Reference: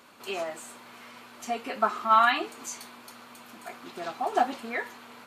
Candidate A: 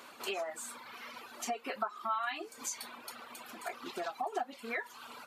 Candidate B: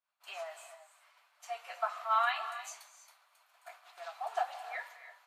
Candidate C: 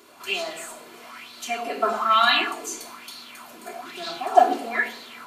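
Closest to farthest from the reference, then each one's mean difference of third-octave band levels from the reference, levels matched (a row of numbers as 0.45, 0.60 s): C, A, B; 4.0, 6.5, 8.5 dB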